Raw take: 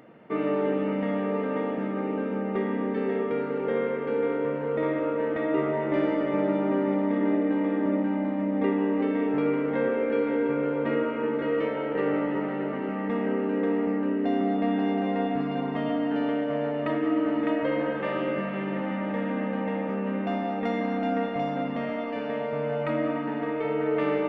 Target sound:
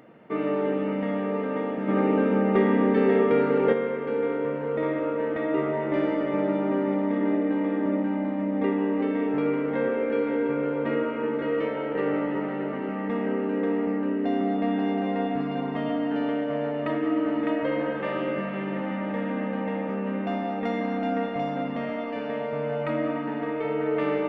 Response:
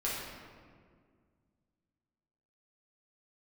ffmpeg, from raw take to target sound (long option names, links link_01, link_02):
-filter_complex "[0:a]asplit=3[link_01][link_02][link_03];[link_01]afade=type=out:start_time=1.87:duration=0.02[link_04];[link_02]acontrast=81,afade=type=in:start_time=1.87:duration=0.02,afade=type=out:start_time=3.72:duration=0.02[link_05];[link_03]afade=type=in:start_time=3.72:duration=0.02[link_06];[link_04][link_05][link_06]amix=inputs=3:normalize=0"